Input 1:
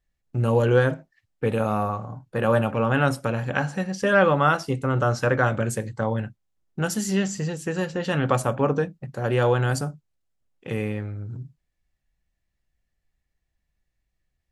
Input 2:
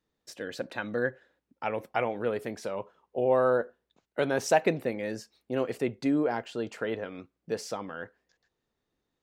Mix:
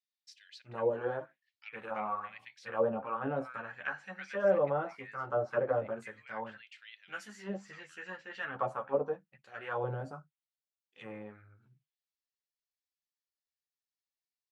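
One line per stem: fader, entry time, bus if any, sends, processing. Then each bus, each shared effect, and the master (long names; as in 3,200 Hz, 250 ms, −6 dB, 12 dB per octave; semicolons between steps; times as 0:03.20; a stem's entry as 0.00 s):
−3.5 dB, 0.30 s, no send, multi-voice chorus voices 6, 0.79 Hz, delay 12 ms, depth 3.1 ms
−7.0 dB, 0.00 s, no send, soft clipping −13.5 dBFS, distortion −23 dB; high-pass with resonance 2,100 Hz, resonance Q 2.4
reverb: not used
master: low-shelf EQ 140 Hz +9 dB; envelope filter 520–4,900 Hz, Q 2.1, down, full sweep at −20.5 dBFS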